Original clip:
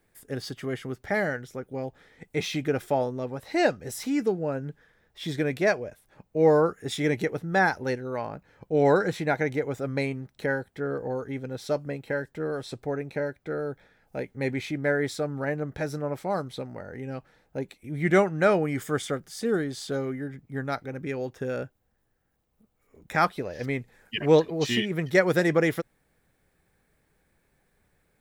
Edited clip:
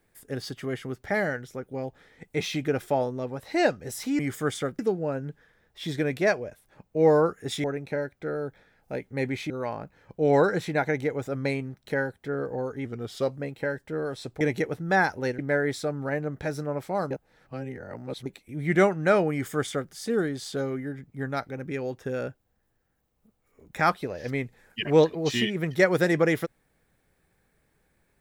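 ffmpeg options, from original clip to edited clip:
-filter_complex "[0:a]asplit=11[s0][s1][s2][s3][s4][s5][s6][s7][s8][s9][s10];[s0]atrim=end=4.192[s11];[s1]atrim=start=18.668:end=19.272[s12];[s2]atrim=start=4.188:end=7.042[s13];[s3]atrim=start=12.878:end=14.742[s14];[s4]atrim=start=8.018:end=11.374[s15];[s5]atrim=start=11.37:end=11.84,asetpts=PTS-STARTPTS,asetrate=40131,aresample=44100[s16];[s6]atrim=start=11.836:end=12.882[s17];[s7]atrim=start=7.038:end=8.022[s18];[s8]atrim=start=14.738:end=16.462[s19];[s9]atrim=start=16.458:end=17.612,asetpts=PTS-STARTPTS,areverse[s20];[s10]atrim=start=17.608[s21];[s11][s12]acrossfade=d=0.004:c1=hsin:c2=hsin[s22];[s22][s13]acrossfade=d=0.004:c1=hsin:c2=hsin[s23];[s23][s14]acrossfade=d=0.004:c1=hsin:c2=hsin[s24];[s24][s15]acrossfade=d=0.004:c1=hsin:c2=hsin[s25];[s25][s16]acrossfade=d=0.004:c1=hsin:c2=hsin[s26];[s26][s17]acrossfade=d=0.004:c1=hsin:c2=hsin[s27];[s27][s18]acrossfade=d=0.004:c1=hsin:c2=hsin[s28];[s28][s19]acrossfade=d=0.004:c1=hsin:c2=hsin[s29];[s29][s20]acrossfade=d=0.004:c1=hsin:c2=hsin[s30];[s30][s21]acrossfade=d=0.004:c1=hsin:c2=hsin"

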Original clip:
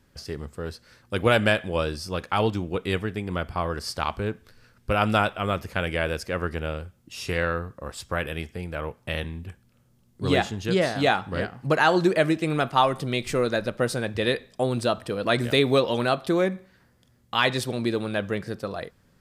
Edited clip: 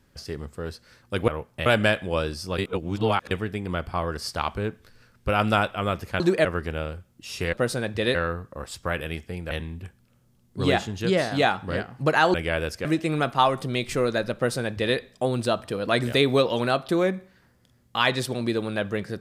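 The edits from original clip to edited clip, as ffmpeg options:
-filter_complex "[0:a]asplit=12[s0][s1][s2][s3][s4][s5][s6][s7][s8][s9][s10][s11];[s0]atrim=end=1.282[s12];[s1]atrim=start=8.768:end=9.152[s13];[s2]atrim=start=1.278:end=2.202[s14];[s3]atrim=start=2.198:end=2.932,asetpts=PTS-STARTPTS,areverse[s15];[s4]atrim=start=2.928:end=5.822[s16];[s5]atrim=start=11.978:end=12.232[s17];[s6]atrim=start=6.328:end=7.412[s18];[s7]atrim=start=13.728:end=14.352[s19];[s8]atrim=start=7.408:end=8.772[s20];[s9]atrim=start=9.148:end=11.982[s21];[s10]atrim=start=5.818:end=6.332[s22];[s11]atrim=start=12.228[s23];[s12][s13]acrossfade=d=0.004:c1=hsin:c2=hsin[s24];[s24][s14]acrossfade=d=0.004:c1=hsin:c2=hsin[s25];[s25][s15]acrossfade=d=0.004:c1=hsin:c2=hsin[s26];[s26][s16]acrossfade=d=0.004:c1=hsin:c2=hsin[s27];[s27][s17]acrossfade=d=0.004:c1=hsin:c2=hsin[s28];[s28][s18]acrossfade=d=0.004:c1=hsin:c2=hsin[s29];[s29][s19]acrossfade=d=0.004:c1=hsin:c2=hsin[s30];[s30][s20]acrossfade=d=0.004:c1=hsin:c2=hsin[s31];[s31][s21]acrossfade=d=0.004:c1=hsin:c2=hsin[s32];[s32][s22]acrossfade=d=0.004:c1=hsin:c2=hsin[s33];[s33][s23]acrossfade=d=0.004:c1=hsin:c2=hsin"

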